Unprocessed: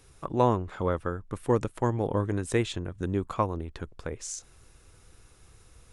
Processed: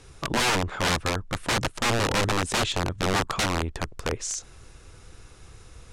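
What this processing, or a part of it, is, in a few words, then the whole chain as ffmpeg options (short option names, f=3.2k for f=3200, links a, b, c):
overflowing digital effects unit: -af "aeval=exprs='(mod(18.8*val(0)+1,2)-1)/18.8':c=same,lowpass=8.1k,volume=8dB"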